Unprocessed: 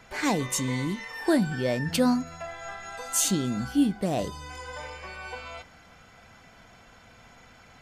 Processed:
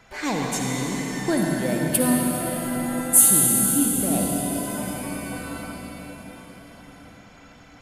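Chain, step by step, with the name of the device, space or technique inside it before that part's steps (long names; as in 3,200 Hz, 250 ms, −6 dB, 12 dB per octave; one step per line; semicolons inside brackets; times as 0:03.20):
0:01.37–0:03.35: high shelf with overshoot 7,800 Hz +12.5 dB, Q 3
cathedral (convolution reverb RT60 5.4 s, pre-delay 53 ms, DRR −1.5 dB)
level −1 dB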